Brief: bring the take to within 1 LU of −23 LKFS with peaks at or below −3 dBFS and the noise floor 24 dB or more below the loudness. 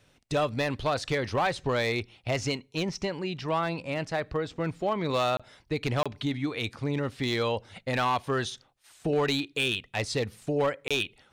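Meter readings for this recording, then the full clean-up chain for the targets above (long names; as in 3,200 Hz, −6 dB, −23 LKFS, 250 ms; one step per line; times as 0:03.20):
share of clipped samples 0.9%; peaks flattened at −19.5 dBFS; number of dropouts 3; longest dropout 26 ms; integrated loudness −29.5 LKFS; sample peak −19.5 dBFS; target loudness −23.0 LKFS
→ clipped peaks rebuilt −19.5 dBFS
repair the gap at 0:05.37/0:06.03/0:10.88, 26 ms
level +6.5 dB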